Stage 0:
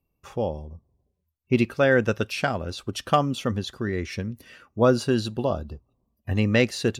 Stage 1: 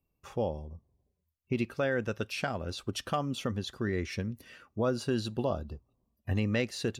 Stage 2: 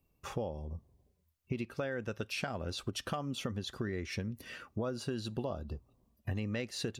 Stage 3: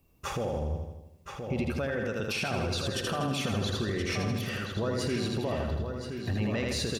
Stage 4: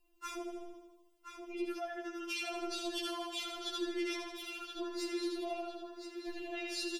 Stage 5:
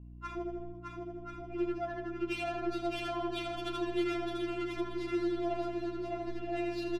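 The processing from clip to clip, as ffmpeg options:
-af "alimiter=limit=-15.5dB:level=0:latency=1:release=281,volume=-4dB"
-af "acompressor=threshold=-40dB:ratio=5,volume=5.5dB"
-filter_complex "[0:a]asplit=2[a][b];[b]aecho=0:1:80|160|240|320|400|480|560|640:0.531|0.303|0.172|0.0983|0.056|0.0319|0.0182|0.0104[c];[a][c]amix=inputs=2:normalize=0,alimiter=level_in=7.5dB:limit=-24dB:level=0:latency=1:release=14,volume=-7.5dB,asplit=2[d][e];[e]adelay=1024,lowpass=f=4.6k:p=1,volume=-6.5dB,asplit=2[f][g];[g]adelay=1024,lowpass=f=4.6k:p=1,volume=0.31,asplit=2[h][i];[i]adelay=1024,lowpass=f=4.6k:p=1,volume=0.31,asplit=2[j][k];[k]adelay=1024,lowpass=f=4.6k:p=1,volume=0.31[l];[f][h][j][l]amix=inputs=4:normalize=0[m];[d][m]amix=inputs=2:normalize=0,volume=8.5dB"
-af "afftfilt=real='re*4*eq(mod(b,16),0)':imag='im*4*eq(mod(b,16),0)':win_size=2048:overlap=0.75,volume=-3.5dB"
-af "aeval=exprs='val(0)+0.00251*(sin(2*PI*60*n/s)+sin(2*PI*2*60*n/s)/2+sin(2*PI*3*60*n/s)/3+sin(2*PI*4*60*n/s)/4+sin(2*PI*5*60*n/s)/5)':c=same,adynamicsmooth=sensitivity=4.5:basefreq=1.3k,aecho=1:1:610|1037|1336|1545|1692:0.631|0.398|0.251|0.158|0.1,volume=4.5dB"

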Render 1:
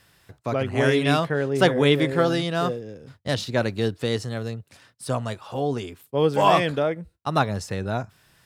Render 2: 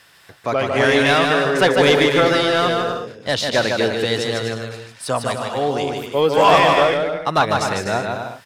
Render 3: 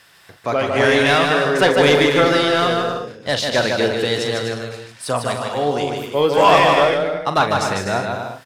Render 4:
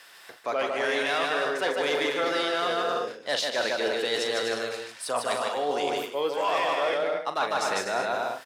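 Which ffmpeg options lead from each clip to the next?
-filter_complex "[0:a]asplit=2[a][b];[b]highpass=f=720:p=1,volume=15dB,asoftclip=type=tanh:threshold=-4dB[c];[a][c]amix=inputs=2:normalize=0,lowpass=f=6.7k:p=1,volume=-6dB,aecho=1:1:150|247.5|310.9|352.1|378.8:0.631|0.398|0.251|0.158|0.1"
-filter_complex "[0:a]asplit=2[a][b];[b]adelay=41,volume=-10dB[c];[a][c]amix=inputs=2:normalize=0"
-af "highpass=380,areverse,acompressor=threshold=-24dB:ratio=6,areverse"

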